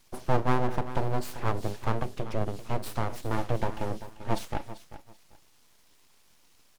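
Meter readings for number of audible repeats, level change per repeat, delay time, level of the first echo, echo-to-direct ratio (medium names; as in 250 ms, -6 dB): 2, -13.0 dB, 391 ms, -14.0 dB, -14.0 dB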